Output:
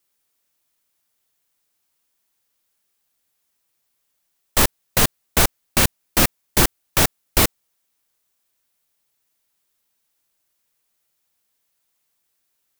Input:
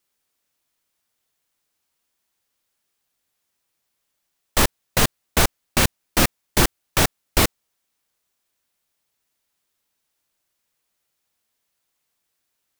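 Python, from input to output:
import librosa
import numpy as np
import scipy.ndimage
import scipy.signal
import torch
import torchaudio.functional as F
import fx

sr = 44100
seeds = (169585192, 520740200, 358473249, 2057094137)

y = fx.high_shelf(x, sr, hz=9000.0, db=6.0)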